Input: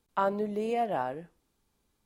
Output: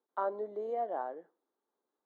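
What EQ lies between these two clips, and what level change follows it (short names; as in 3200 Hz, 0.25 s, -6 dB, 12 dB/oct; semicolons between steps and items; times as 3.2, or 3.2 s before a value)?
running mean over 17 samples; HPF 330 Hz 24 dB/oct; -4.0 dB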